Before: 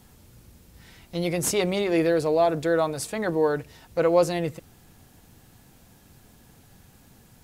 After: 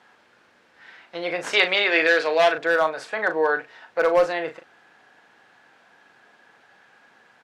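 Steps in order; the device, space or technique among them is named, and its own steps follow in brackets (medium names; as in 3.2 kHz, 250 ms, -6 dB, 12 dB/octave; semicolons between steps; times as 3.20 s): megaphone (band-pass 620–2700 Hz; peaking EQ 1.6 kHz +8 dB 0.39 oct; hard clipper -17.5 dBFS, distortion -19 dB; doubling 38 ms -9 dB); 1.53–2.58 s: frequency weighting D; trim +5.5 dB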